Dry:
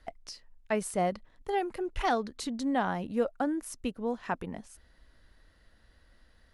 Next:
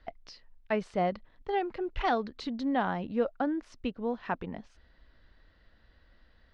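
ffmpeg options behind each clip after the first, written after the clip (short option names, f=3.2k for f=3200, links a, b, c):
-af "lowpass=f=4.5k:w=0.5412,lowpass=f=4.5k:w=1.3066"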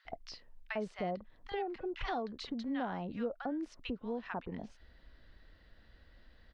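-filter_complex "[0:a]acrossover=split=1100[a][b];[a]adelay=50[c];[c][b]amix=inputs=2:normalize=0,acompressor=threshold=-42dB:ratio=2,volume=1.5dB"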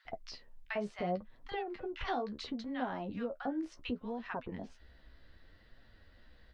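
-af "flanger=delay=7.1:depth=9.2:regen=30:speed=0.69:shape=triangular,volume=4.5dB"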